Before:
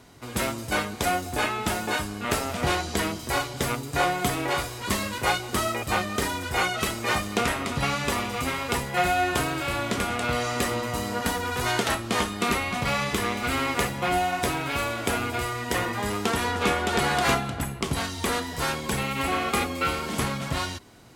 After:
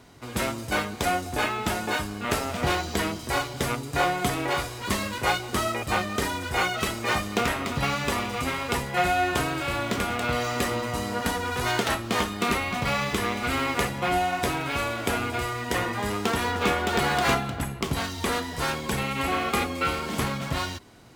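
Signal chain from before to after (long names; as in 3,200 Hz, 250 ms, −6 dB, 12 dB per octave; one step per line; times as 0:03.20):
linearly interpolated sample-rate reduction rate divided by 2×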